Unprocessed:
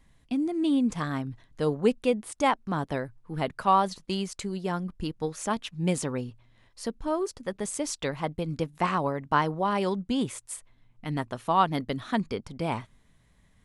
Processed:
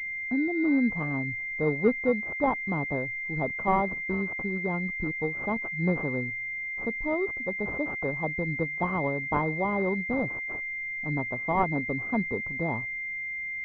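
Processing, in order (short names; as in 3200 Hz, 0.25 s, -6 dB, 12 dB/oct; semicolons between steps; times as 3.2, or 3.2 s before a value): 10–10.55 self-modulated delay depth 0.92 ms; pulse-width modulation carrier 2100 Hz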